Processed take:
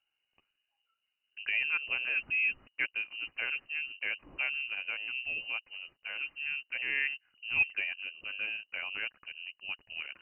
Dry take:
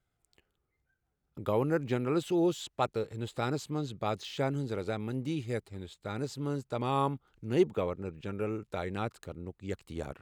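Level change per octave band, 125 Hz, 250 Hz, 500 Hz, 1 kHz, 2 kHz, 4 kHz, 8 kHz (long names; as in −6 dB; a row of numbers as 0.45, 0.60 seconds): below −25 dB, −28.0 dB, −24.0 dB, −16.0 dB, +14.5 dB, +5.5 dB, below −30 dB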